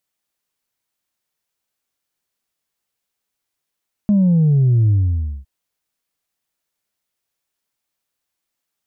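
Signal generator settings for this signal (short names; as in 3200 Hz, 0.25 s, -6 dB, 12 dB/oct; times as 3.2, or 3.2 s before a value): sub drop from 210 Hz, over 1.36 s, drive 1 dB, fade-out 0.55 s, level -11 dB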